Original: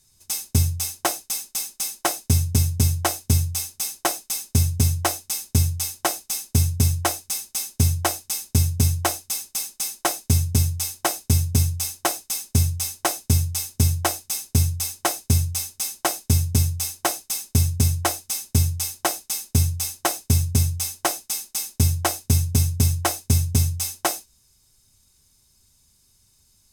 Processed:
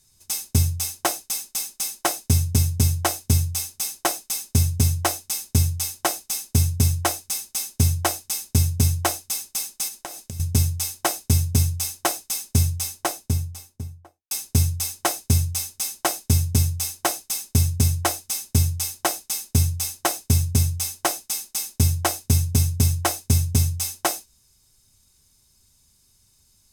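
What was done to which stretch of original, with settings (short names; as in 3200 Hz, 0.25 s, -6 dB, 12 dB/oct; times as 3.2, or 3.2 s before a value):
9.88–10.4 compressor 8:1, threshold -31 dBFS
12.68–14.31 studio fade out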